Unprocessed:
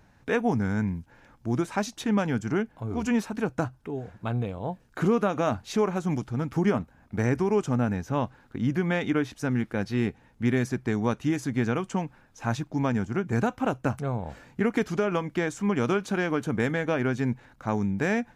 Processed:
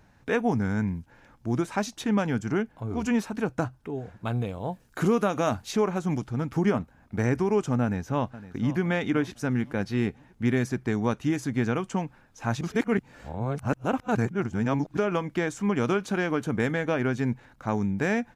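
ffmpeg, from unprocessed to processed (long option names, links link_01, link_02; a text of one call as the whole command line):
ffmpeg -i in.wav -filter_complex "[0:a]asettb=1/sr,asplit=3[link_01][link_02][link_03];[link_01]atrim=end=4.254[link_04];[link_02]atrim=start=4.25:end=5.71,asetpts=PTS-STARTPTS,afade=type=in:duration=0.004:curve=qsin,afade=type=out:start_time=1.456:duration=0.004:curve=qsin,highshelf=frequency=5400:gain=9.5[link_05];[link_03]atrim=start=5.706[link_06];[link_04][link_05]acrossfade=duration=0.004:curve1=hsin:curve2=qsin[link_07];[link_07][link_06]acrossfade=duration=0.004:curve1=qsin:curve2=hsin,asplit=2[link_08][link_09];[link_09]afade=type=in:start_time=7.82:duration=0.01,afade=type=out:start_time=8.79:duration=0.01,aecho=0:1:510|1020|1530|2040:0.16788|0.0671522|0.0268609|0.0107443[link_10];[link_08][link_10]amix=inputs=2:normalize=0,asplit=3[link_11][link_12][link_13];[link_11]atrim=end=12.612[link_14];[link_12]atrim=start=12.608:end=14.972,asetpts=PTS-STARTPTS,areverse[link_15];[link_13]atrim=start=14.968[link_16];[link_14][link_15]acrossfade=duration=0.004:curve1=hsin:curve2=hsin[link_17];[link_17][link_16]acrossfade=duration=0.004:curve1=hsin:curve2=hsin" out.wav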